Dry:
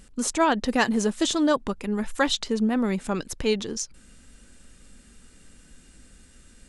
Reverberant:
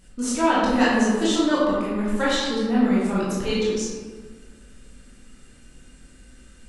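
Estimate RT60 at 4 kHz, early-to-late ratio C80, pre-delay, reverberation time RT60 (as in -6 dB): 0.85 s, 1.0 dB, 16 ms, 1.6 s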